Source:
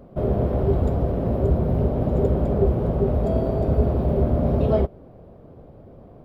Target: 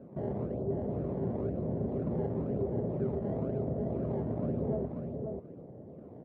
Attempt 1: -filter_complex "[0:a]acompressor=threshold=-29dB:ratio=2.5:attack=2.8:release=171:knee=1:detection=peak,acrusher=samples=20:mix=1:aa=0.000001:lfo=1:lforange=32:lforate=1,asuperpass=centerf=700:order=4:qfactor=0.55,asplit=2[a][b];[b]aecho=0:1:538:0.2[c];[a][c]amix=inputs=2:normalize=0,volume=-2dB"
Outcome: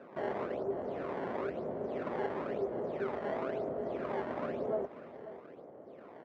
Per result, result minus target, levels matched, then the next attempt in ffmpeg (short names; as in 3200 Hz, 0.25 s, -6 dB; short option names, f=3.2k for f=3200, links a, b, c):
echo-to-direct -9.5 dB; 250 Hz band -4.5 dB
-filter_complex "[0:a]acompressor=threshold=-29dB:ratio=2.5:attack=2.8:release=171:knee=1:detection=peak,acrusher=samples=20:mix=1:aa=0.000001:lfo=1:lforange=32:lforate=1,asuperpass=centerf=700:order=4:qfactor=0.55,asplit=2[a][b];[b]aecho=0:1:538:0.596[c];[a][c]amix=inputs=2:normalize=0,volume=-2dB"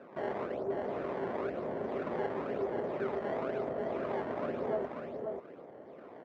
250 Hz band -4.5 dB
-filter_complex "[0:a]acompressor=threshold=-29dB:ratio=2.5:attack=2.8:release=171:knee=1:detection=peak,acrusher=samples=20:mix=1:aa=0.000001:lfo=1:lforange=32:lforate=1,asuperpass=centerf=270:order=4:qfactor=0.55,asplit=2[a][b];[b]aecho=0:1:538:0.596[c];[a][c]amix=inputs=2:normalize=0,volume=-2dB"